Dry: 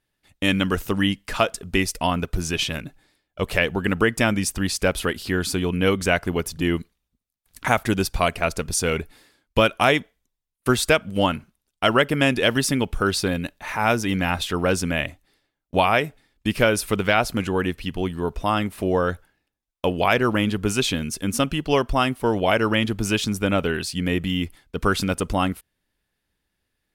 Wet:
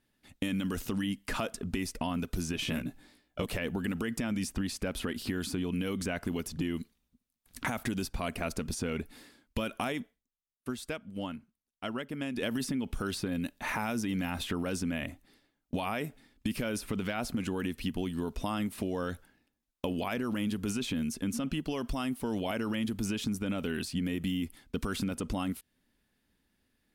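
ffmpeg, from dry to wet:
-filter_complex "[0:a]asettb=1/sr,asplit=3[s0][s1][s2];[s0]atrim=end=2.634[s3];[s1]atrim=start=2.63:end=3.46,asetpts=PTS-STARTPTS,afade=t=in:d=0.004:c=qsin,afade=t=out:st=0.826:d=0.004:c=qsin,asplit=2[s4][s5];[s5]adelay=17,volume=0.708[s6];[s4][s6]amix=inputs=2:normalize=0,atrim=end_sample=36603[s7];[s2]atrim=start=3.456[s8];[s3][s7]acrossfade=d=0.004:c1=hsin:c2=qsin[s9];[s9][s8]acrossfade=d=0.004:c1=qsin:c2=hsin,asplit=3[s10][s11][s12];[s10]atrim=end=10.22,asetpts=PTS-STARTPTS,afade=t=out:st=9.94:d=0.28:silence=0.125893[s13];[s11]atrim=start=10.22:end=12.33,asetpts=PTS-STARTPTS,volume=0.126[s14];[s12]atrim=start=12.33,asetpts=PTS-STARTPTS,afade=t=in:d=0.28:silence=0.125893[s15];[s13][s14][s15]concat=n=3:v=0:a=1,equalizer=f=240:t=o:w=0.67:g=10,alimiter=limit=0.211:level=0:latency=1:release=31,acrossover=split=2800|7700[s16][s17][s18];[s16]acompressor=threshold=0.0251:ratio=4[s19];[s17]acompressor=threshold=0.00501:ratio=4[s20];[s18]acompressor=threshold=0.00398:ratio=4[s21];[s19][s20][s21]amix=inputs=3:normalize=0"

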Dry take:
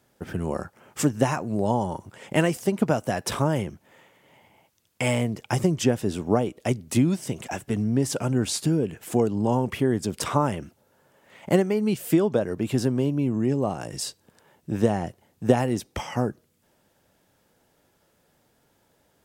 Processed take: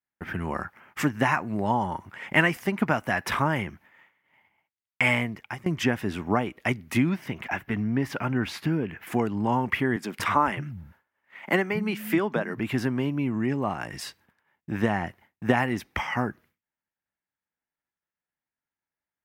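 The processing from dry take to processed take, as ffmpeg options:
-filter_complex "[0:a]asettb=1/sr,asplit=3[s0][s1][s2];[s0]atrim=end=7.094[s3];[s1]atrim=start=7.09:end=9.07,asetpts=PTS-STARTPTS,afade=t=in:d=0.004:c=qsin,afade=t=out:st=1.976:d=0.004:c=qsin,equalizer=f=8400:w=0.85:g=-10.5[s4];[s2]atrim=start=9.066[s5];[s3][s4]acrossfade=d=0.004:c1=hsin:c2=qsin[s6];[s6][s5]acrossfade=d=0.004:c1=qsin:c2=hsin,asettb=1/sr,asplit=3[s7][s8][s9];[s7]atrim=end=9.964[s10];[s8]atrim=start=9.96:end=12.6,asetpts=PTS-STARTPTS,afade=t=in:d=0.004:c=qsin,afade=t=out:st=2.636:d=0.004:c=qsin,acrossover=split=170[s11][s12];[s11]adelay=230[s13];[s13][s12]amix=inputs=2:normalize=0,atrim=end_sample=116424[s14];[s9]atrim=start=12.596[s15];[s10][s14]acrossfade=d=0.004:c1=hsin:c2=qsin[s16];[s16][s15]acrossfade=d=0.004:c1=qsin:c2=hsin,asplit=2[s17][s18];[s17]atrim=end=5.66,asetpts=PTS-STARTPTS,afade=t=out:st=5.15:d=0.51:silence=0.0749894[s19];[s18]atrim=start=5.66,asetpts=PTS-STARTPTS,afade=t=in:d=0.004:c=hsin:silence=0.0749894[s20];[s19][s20]concat=n=2:v=0:a=1,agate=range=0.0224:threshold=0.00447:ratio=3:detection=peak,equalizer=f=125:t=o:w=1:g=-4,equalizer=f=500:t=o:w=1:g=-8,equalizer=f=1000:t=o:w=1:g=4,equalizer=f=2000:t=o:w=1:g=11,equalizer=f=4000:t=o:w=1:g=-3,equalizer=f=8000:t=o:w=1:g=-11"

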